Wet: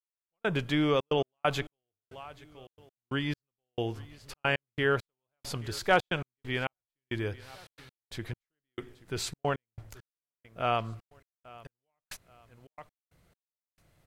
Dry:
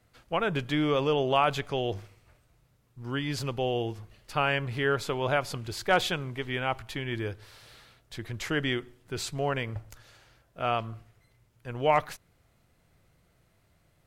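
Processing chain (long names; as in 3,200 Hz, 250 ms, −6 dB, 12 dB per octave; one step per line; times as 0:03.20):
repeating echo 830 ms, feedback 32%, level −21.5 dB
gate pattern "....xxxxx.x..xx" 135 BPM −60 dB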